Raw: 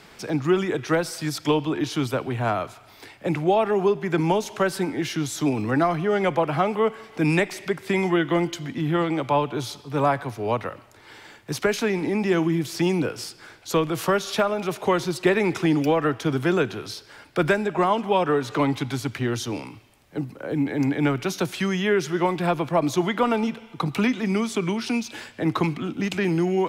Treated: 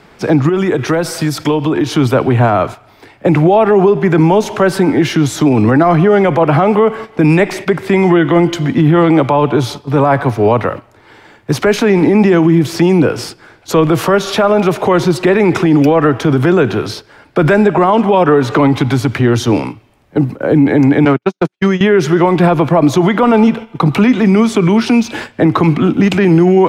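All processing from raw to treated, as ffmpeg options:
ffmpeg -i in.wav -filter_complex "[0:a]asettb=1/sr,asplit=3[link_01][link_02][link_03];[link_01]atrim=end=0.494[link_04];[link_02]atrim=start=0.49:end=1.94,asetpts=PTS-STARTPTS,afade=type=in:duration=0.004:curve=qsin,afade=type=out:start_time=1.446:duration=0.004:curve=qsin,highshelf=frequency=6500:gain=5.5,acompressor=threshold=-27dB:ratio=5:attack=3.2:release=140:knee=1:detection=peak[link_05];[link_03]atrim=start=1.936[link_06];[link_04][link_05]acrossfade=duration=0.004:curve1=hsin:curve2=qsin[link_07];[link_07][link_06]acrossfade=duration=0.004:curve1=qsin:curve2=hsin,asettb=1/sr,asplit=3[link_08][link_09][link_10];[link_08]atrim=end=21.054[link_11];[link_09]atrim=start=21.05:end=21.81,asetpts=PTS-STARTPTS,afade=type=in:duration=0.004:curve=qsin,afade=type=out:start_time=0.756:duration=0.004:curve=qsin,agate=range=-53dB:threshold=-24dB:ratio=16:release=100:detection=peak,asoftclip=type=hard:threshold=-19dB,highpass=160,lowpass=7900[link_12];[link_10]atrim=start=21.806[link_13];[link_11][link_12]acrossfade=duration=0.004:curve1=hsin:curve2=qsin[link_14];[link_14][link_13]acrossfade=duration=0.004:curve1=qsin:curve2=hsin,agate=range=-10dB:threshold=-38dB:ratio=16:detection=peak,highshelf=frequency=2500:gain=-11.5,alimiter=level_in=19dB:limit=-1dB:release=50:level=0:latency=1,volume=-1dB" out.wav

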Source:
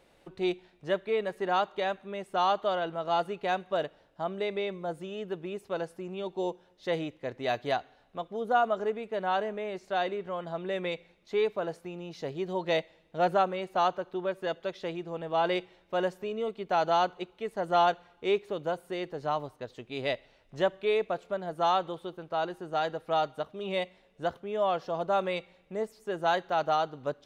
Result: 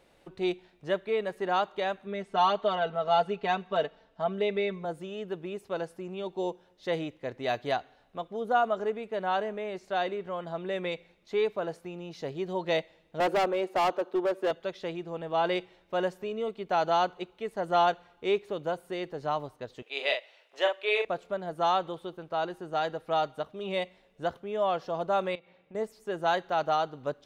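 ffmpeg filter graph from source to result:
ffmpeg -i in.wav -filter_complex "[0:a]asettb=1/sr,asplit=3[link_01][link_02][link_03];[link_01]atrim=end=2.064[link_04];[link_02]atrim=start=2.06:end=4.85,asetpts=PTS-STARTPTS,afade=type=in:duration=0.004:curve=qsin,afade=type=out:start_time=2.786:duration=0.004:curve=qsin,lowpass=5900,aecho=1:1:4.5:0.75,atrim=end_sample=123039[link_05];[link_03]atrim=start=4.846[link_06];[link_04][link_05]acrossfade=duration=0.004:curve1=hsin:curve2=qsin[link_07];[link_07][link_06]acrossfade=duration=0.004:curve1=qsin:curve2=hsin,asettb=1/sr,asplit=3[link_08][link_09][link_10];[link_08]atrim=end=13.204[link_11];[link_09]atrim=start=13.2:end=14.51,asetpts=PTS-STARTPTS,afade=type=in:duration=0.004:curve=qsin,afade=type=out:start_time=1.306:duration=0.004:curve=qsin,highpass=frequency=240:width=0.5412,highpass=frequency=240:width=1.3066,equalizer=frequency=350:width_type=o:width=2.7:gain=7,asoftclip=type=hard:threshold=-22.5dB[link_12];[link_10]atrim=start=14.506[link_13];[link_11][link_12]acrossfade=duration=0.004:curve1=hsin:curve2=qsin[link_14];[link_14][link_13]acrossfade=duration=0.004:curve1=qsin:curve2=hsin,asettb=1/sr,asplit=3[link_15][link_16][link_17];[link_15]atrim=end=19.824[link_18];[link_16]atrim=start=19.82:end=21.05,asetpts=PTS-STARTPTS,afade=type=in:duration=0.004:curve=qsin,afade=type=out:start_time=1.226:duration=0.004:curve=qsin,highpass=frequency=450:width=0.5412,highpass=frequency=450:width=1.3066,equalizer=frequency=2700:width=1.4:gain=7,asplit=2[link_19][link_20];[link_20]adelay=43,volume=-5dB[link_21];[link_19][link_21]amix=inputs=2:normalize=0,atrim=end_sample=54243[link_22];[link_17]atrim=start=21.046[link_23];[link_18][link_22]acrossfade=duration=0.004:curve1=hsin:curve2=qsin[link_24];[link_24][link_23]acrossfade=duration=0.004:curve1=qsin:curve2=hsin,asettb=1/sr,asplit=3[link_25][link_26][link_27];[link_25]atrim=end=25.354[link_28];[link_26]atrim=start=25.35:end=25.75,asetpts=PTS-STARTPTS,afade=type=in:duration=0.004:curve=qsin,afade=type=out:start_time=0.396:duration=0.004:curve=qsin,highpass=110,lowpass=3300,acompressor=threshold=-48dB:ratio=4:attack=3.2:release=140:knee=1:detection=peak[link_29];[link_27]atrim=start=25.746[link_30];[link_28][link_29]acrossfade=duration=0.004:curve1=hsin:curve2=qsin[link_31];[link_31][link_30]acrossfade=duration=0.004:curve1=qsin:curve2=hsin" out.wav

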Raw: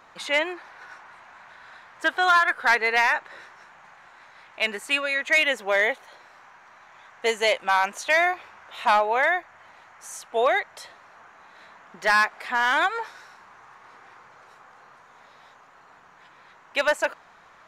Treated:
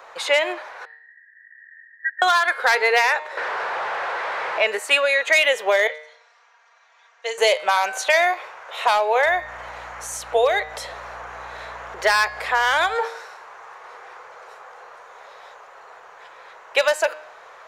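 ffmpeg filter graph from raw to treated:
ffmpeg -i in.wav -filter_complex "[0:a]asettb=1/sr,asplit=3[link_01][link_02][link_03];[link_01]atrim=end=0.854[link_04];[link_02]atrim=start=0.85:end=2.22,asetpts=PTS-STARTPTS,afade=type=in:duration=0.004:curve=qsin,afade=type=out:start_time=1.366:duration=0.004:curve=qsin,asuperpass=centerf=1800:order=8:qfactor=6.6,aecho=1:1:3.2:0.58,atrim=end_sample=60417[link_05];[link_03]atrim=start=2.216[link_06];[link_04][link_05]acrossfade=duration=0.004:curve1=hsin:curve2=qsin[link_07];[link_07][link_06]acrossfade=duration=0.004:curve1=qsin:curve2=hsin,asettb=1/sr,asplit=3[link_08][link_09][link_10];[link_08]atrim=end=3.374[link_11];[link_09]atrim=start=3.37:end=4.67,asetpts=PTS-STARTPTS,afade=type=in:duration=0.004:curve=qsin,afade=type=out:start_time=1.296:duration=0.004:curve=qsin,aeval=exprs='val(0)+0.5*0.0376*sgn(val(0))':channel_layout=same,highpass=130,lowpass=2400[link_12];[link_10]atrim=start=4.666[link_13];[link_11][link_12]acrossfade=duration=0.004:curve1=hsin:curve2=qsin[link_14];[link_14][link_13]acrossfade=duration=0.004:curve1=qsin:curve2=hsin,asettb=1/sr,asplit=3[link_15][link_16][link_17];[link_15]atrim=end=5.874[link_18];[link_16]atrim=start=5.87:end=7.38,asetpts=PTS-STARTPTS,afade=type=in:duration=0.004:curve=qsin,afade=type=out:start_time=1.506:duration=0.004:curve=qsin,bandpass=frequency=5900:width_type=q:width=1.2,aemphasis=mode=reproduction:type=riaa,aecho=1:1:4.3:0.78,atrim=end_sample=66591[link_19];[link_17]atrim=start=7.376[link_20];[link_18][link_19]acrossfade=duration=0.004:curve1=hsin:curve2=qsin[link_21];[link_21][link_20]acrossfade=duration=0.004:curve1=qsin:curve2=hsin,asettb=1/sr,asplit=3[link_22][link_23][link_24];[link_22]atrim=end=9.254[link_25];[link_23]atrim=start=9.25:end=12.95,asetpts=PTS-STARTPTS,afade=type=in:duration=0.004:curve=qsin,afade=type=out:start_time=3.696:duration=0.004:curve=qsin,acompressor=mode=upward:threshold=-35dB:ratio=2.5:attack=3.2:release=140:knee=2.83:detection=peak,aeval=exprs='val(0)+0.00708*(sin(2*PI*60*n/s)+sin(2*PI*2*60*n/s)/2+sin(2*PI*3*60*n/s)/3+sin(2*PI*4*60*n/s)/4+sin(2*PI*5*60*n/s)/5)':channel_layout=same[link_26];[link_24]atrim=start=12.946[link_27];[link_25][link_26]acrossfade=duration=0.004:curve1=hsin:curve2=qsin[link_28];[link_28][link_27]acrossfade=duration=0.004:curve1=qsin:curve2=hsin,lowshelf=frequency=340:width_type=q:width=3:gain=-11.5,bandreject=frequency=153.1:width_type=h:width=4,bandreject=frequency=306.2:width_type=h:width=4,bandreject=frequency=459.3:width_type=h:width=4,bandreject=frequency=612.4:width_type=h:width=4,bandreject=frequency=765.5:width_type=h:width=4,bandreject=frequency=918.6:width_type=h:width=4,bandreject=frequency=1071.7:width_type=h:width=4,bandreject=frequency=1224.8:width_type=h:width=4,bandreject=frequency=1377.9:width_type=h:width=4,bandreject=frequency=1531:width_type=h:width=4,bandreject=frequency=1684.1:width_type=h:width=4,bandreject=frequency=1837.2:width_type=h:width=4,bandreject=frequency=1990.3:width_type=h:width=4,bandreject=frequency=2143.4:width_type=h:width=4,bandreject=frequency=2296.5:width_type=h:width=4,bandreject=frequency=2449.6:width_type=h:width=4,bandreject=frequency=2602.7:width_type=h:width=4,bandreject=frequency=2755.8:width_type=h:width=4,bandreject=frequency=2908.9:width_type=h:width=4,bandreject=frequency=3062:width_type=h:width=4,bandreject=frequency=3215.1:width_type=h:width=4,bandreject=frequency=3368.2:width_type=h:width=4,bandreject=frequency=3521.3:width_type=h:width=4,bandreject=frequency=3674.4:width_type=h:width=4,bandreject=frequency=3827.5:width_type=h:width=4,bandreject=frequency=3980.6:width_type=h:width=4,bandreject=frequency=4133.7:width_type=h:width=4,bandreject=frequency=4286.8:width_type=h:width=4,bandreject=frequency=4439.9:width_type=h:width=4,bandreject=frequency=4593:width_type=h:width=4,bandreject=frequency=4746.1:width_type=h:width=4,bandreject=frequency=4899.2:width_type=h:width=4,bandreject=frequency=5052.3:width_type=h:width=4,acrossover=split=190|3000[link_29][link_30][link_31];[link_30]acompressor=threshold=-23dB:ratio=6[link_32];[link_29][link_32][link_31]amix=inputs=3:normalize=0,volume=7dB" out.wav

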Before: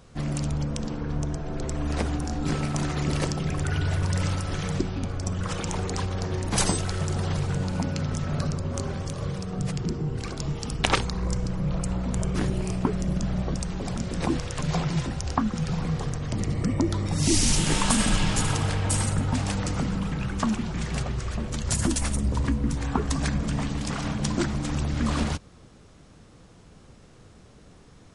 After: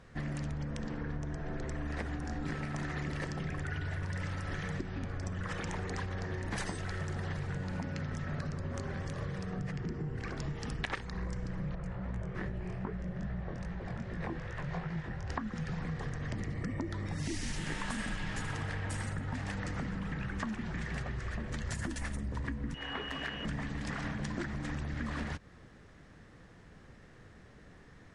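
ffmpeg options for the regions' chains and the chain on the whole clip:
ffmpeg -i in.wav -filter_complex "[0:a]asettb=1/sr,asplit=3[link_01][link_02][link_03];[link_01]atrim=end=9.604[link_04];[link_02]atrim=start=9.6:end=10.38,asetpts=PTS-STARTPTS,afade=type=in:duration=0.004:curve=qsin,afade=type=out:start_time=0.776:duration=0.004:curve=qsin,acrossover=split=7100[link_05][link_06];[link_06]acompressor=threshold=-58dB:ratio=4:attack=1:release=60[link_07];[link_05][link_07]amix=inputs=2:normalize=0,equalizer=frequency=3800:width_type=o:width=0.55:gain=-4[link_08];[link_03]atrim=start=10.376[link_09];[link_04][link_08]acrossfade=duration=0.004:curve1=hsin:curve2=qsin[link_10];[link_10][link_09]acrossfade=duration=0.004:curve1=qsin:curve2=hsin,asettb=1/sr,asplit=3[link_11][link_12][link_13];[link_11]atrim=end=11.754[link_14];[link_12]atrim=start=11.75:end=15.3,asetpts=PTS-STARTPTS,afade=type=in:duration=0.004:curve=qsin,afade=type=out:start_time=3.546:duration=0.004:curve=qsin,lowpass=frequency=1900:poles=1,equalizer=frequency=270:width_type=o:width=0.35:gain=-10,flanger=delay=17:depth=7.2:speed=2.5[link_15];[link_13]atrim=start=15.296[link_16];[link_14][link_15]acrossfade=duration=0.004:curve1=hsin:curve2=qsin[link_17];[link_17][link_16]acrossfade=duration=0.004:curve1=qsin:curve2=hsin,asettb=1/sr,asplit=3[link_18][link_19][link_20];[link_18]atrim=end=22.744[link_21];[link_19]atrim=start=22.74:end=23.45,asetpts=PTS-STARTPTS,afade=type=in:duration=0.004:curve=qsin,afade=type=out:start_time=0.706:duration=0.004:curve=qsin,aeval=exprs='val(0)+0.0251*sin(2*PI*2900*n/s)':channel_layout=same,asoftclip=type=hard:threshold=-24.5dB,bass=frequency=250:gain=-13,treble=frequency=4000:gain=-10[link_22];[link_20]atrim=start=23.446[link_23];[link_21][link_22]acrossfade=duration=0.004:curve1=hsin:curve2=qsin[link_24];[link_24][link_23]acrossfade=duration=0.004:curve1=qsin:curve2=hsin,lowpass=frequency=3500:poles=1,equalizer=frequency=1800:width_type=o:width=0.45:gain=12,acompressor=threshold=-29dB:ratio=6,volume=-4.5dB" out.wav

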